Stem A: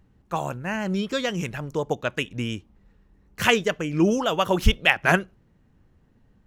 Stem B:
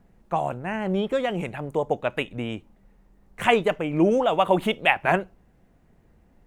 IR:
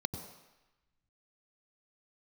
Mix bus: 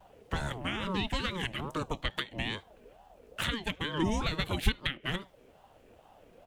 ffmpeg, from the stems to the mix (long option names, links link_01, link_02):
-filter_complex "[0:a]volume=-13.5dB[link_01];[1:a]highshelf=frequency=1800:width_type=q:width=3:gain=7,acrossover=split=270|2200[link_02][link_03][link_04];[link_02]acompressor=threshold=-43dB:ratio=4[link_05];[link_03]acompressor=threshold=-35dB:ratio=4[link_06];[link_04]acompressor=threshold=-22dB:ratio=4[link_07];[link_05][link_06][link_07]amix=inputs=3:normalize=0,aeval=exprs='val(0)*sin(2*PI*610*n/s+610*0.3/2.3*sin(2*PI*2.3*n/s))':channel_layout=same,volume=-1,adelay=3.5,volume=1dB,asplit=2[link_08][link_09];[link_09]apad=whole_len=285259[link_10];[link_01][link_10]sidechaincompress=threshold=-24dB:ratio=8:attack=16:release=776[link_11];[link_11][link_08]amix=inputs=2:normalize=0,lowshelf=frequency=230:gain=6,acrossover=split=410[link_12][link_13];[link_13]acompressor=threshold=-32dB:ratio=4[link_14];[link_12][link_14]amix=inputs=2:normalize=0"